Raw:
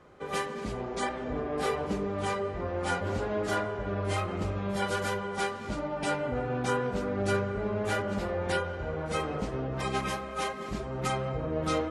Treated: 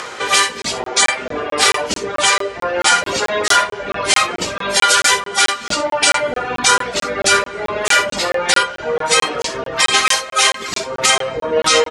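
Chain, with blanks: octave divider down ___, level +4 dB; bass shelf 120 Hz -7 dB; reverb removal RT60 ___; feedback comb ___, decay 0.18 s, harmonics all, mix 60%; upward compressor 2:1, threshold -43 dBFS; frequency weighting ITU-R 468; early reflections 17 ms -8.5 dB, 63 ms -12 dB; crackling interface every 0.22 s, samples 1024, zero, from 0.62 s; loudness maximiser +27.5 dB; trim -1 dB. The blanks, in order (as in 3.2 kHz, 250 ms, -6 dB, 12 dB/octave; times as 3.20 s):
2 oct, 1.6 s, 470 Hz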